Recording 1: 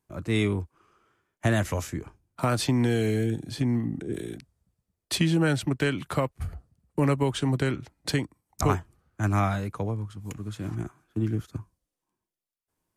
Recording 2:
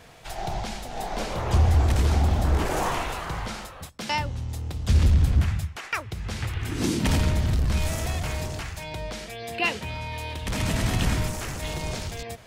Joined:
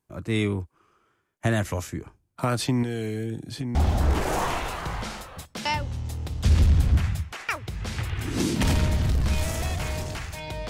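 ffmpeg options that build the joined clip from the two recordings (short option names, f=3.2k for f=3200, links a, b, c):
-filter_complex "[0:a]asettb=1/sr,asplit=3[a][b][c];[a]atrim=end=2.834[d];[b]atrim=start=2.83:end=3.75,asetpts=PTS-STARTPTS,afade=t=in:d=0.004:c=qsin,afade=t=out:st=0.916:d=0.004:c=qsin,acompressor=threshold=-26dB:ratio=4:attack=3.2:release=140:knee=1:detection=peak[e];[c]atrim=start=3.746[f];[d][e]acrossfade=d=0.004:c1=hsin:c2=qsin[g];[g][f]acrossfade=d=0.004:c1=qsin:c2=hsin,apad=whole_dur=10.69,atrim=end=10.69,atrim=end=3.752[h];[1:a]atrim=start=2.188:end=9.13[i];[h][i]acrossfade=d=0.004:c1=hsin:c2=hsin"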